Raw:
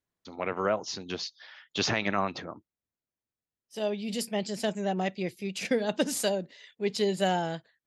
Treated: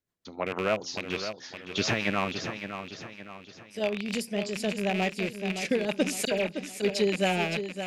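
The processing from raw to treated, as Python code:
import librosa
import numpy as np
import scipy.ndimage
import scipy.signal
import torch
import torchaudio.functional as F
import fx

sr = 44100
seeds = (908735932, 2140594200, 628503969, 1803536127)

p1 = fx.rattle_buzz(x, sr, strikes_db=-38.0, level_db=-21.0)
p2 = fx.rotary(p1, sr, hz=6.7)
p3 = fx.dispersion(p2, sr, late='lows', ms=64.0, hz=2600.0, at=(6.25, 6.67))
p4 = p3 + fx.echo_feedback(p3, sr, ms=564, feedback_pct=44, wet_db=-9.0, dry=0)
y = F.gain(torch.from_numpy(p4), 2.5).numpy()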